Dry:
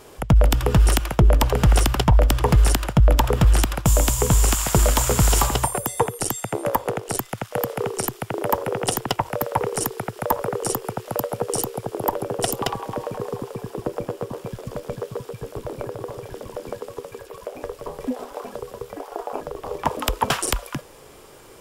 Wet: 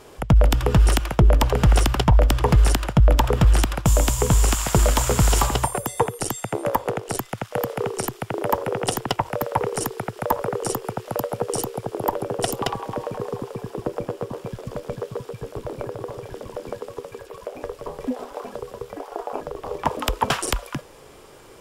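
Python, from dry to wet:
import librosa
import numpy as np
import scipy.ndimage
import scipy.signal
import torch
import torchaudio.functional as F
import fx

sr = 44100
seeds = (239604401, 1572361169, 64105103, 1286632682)

y = fx.high_shelf(x, sr, hz=9500.0, db=-7.0)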